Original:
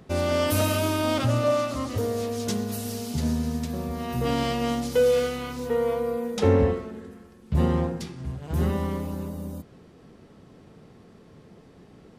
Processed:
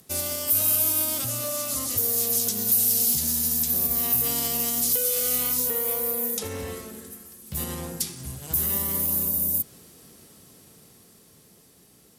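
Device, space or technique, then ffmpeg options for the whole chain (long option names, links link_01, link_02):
FM broadcast chain: -filter_complex "[0:a]highpass=41,dynaudnorm=framelen=380:gausssize=13:maxgain=11.5dB,acrossover=split=1100|5500[link_01][link_02][link_03];[link_01]acompressor=threshold=-20dB:ratio=4[link_04];[link_02]acompressor=threshold=-33dB:ratio=4[link_05];[link_03]acompressor=threshold=-39dB:ratio=4[link_06];[link_04][link_05][link_06]amix=inputs=3:normalize=0,aemphasis=mode=production:type=75fm,alimiter=limit=-15.5dB:level=0:latency=1:release=91,asoftclip=type=hard:threshold=-18.5dB,lowpass=frequency=15000:width=0.5412,lowpass=frequency=15000:width=1.3066,aemphasis=mode=production:type=75fm,volume=-8dB"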